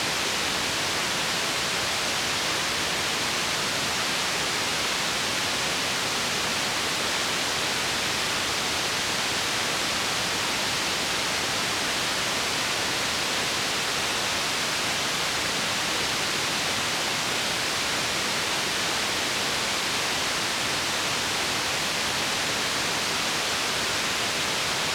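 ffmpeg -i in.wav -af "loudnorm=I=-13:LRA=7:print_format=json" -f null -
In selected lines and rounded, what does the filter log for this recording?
"input_i" : "-24.2",
"input_tp" : "-12.8",
"input_lra" : "0.1",
"input_thresh" : "-34.2",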